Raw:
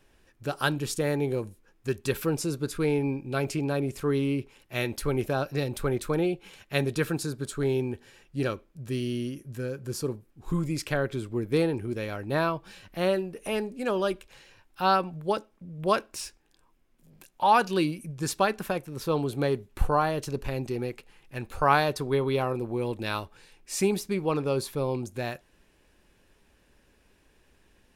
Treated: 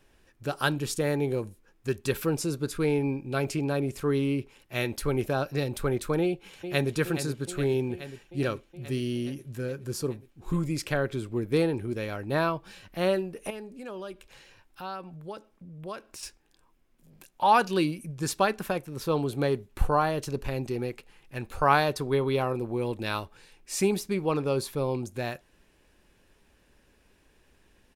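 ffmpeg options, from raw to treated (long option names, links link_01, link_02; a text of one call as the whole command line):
ffmpeg -i in.wav -filter_complex "[0:a]asplit=2[link_01][link_02];[link_02]afade=type=in:start_time=6.21:duration=0.01,afade=type=out:start_time=6.92:duration=0.01,aecho=0:1:420|840|1260|1680|2100|2520|2940|3360|3780|4200|4620|5040:0.316228|0.237171|0.177878|0.133409|0.100056|0.0750423|0.0562817|0.0422113|0.0316585|0.0237439|0.0178079|0.0133559[link_03];[link_01][link_03]amix=inputs=2:normalize=0,asettb=1/sr,asplit=3[link_04][link_05][link_06];[link_04]atrim=end=13.504[link_07];[link_05]atrim=start=13.5:end=16.23,asetpts=PTS-STARTPTS,afade=type=in:duration=0.004:curve=qsin,afade=type=out:start_time=2.726:duration=0.004:curve=qsin,acompressor=threshold=-45dB:ratio=2:attack=3.2:release=140:knee=1:detection=peak[link_08];[link_06]atrim=start=16.226[link_09];[link_07][link_08]acrossfade=duration=0.004:curve1=hsin:curve2=qsin[link_10];[link_10][link_09]acrossfade=duration=0.004:curve1=qsin:curve2=hsin" out.wav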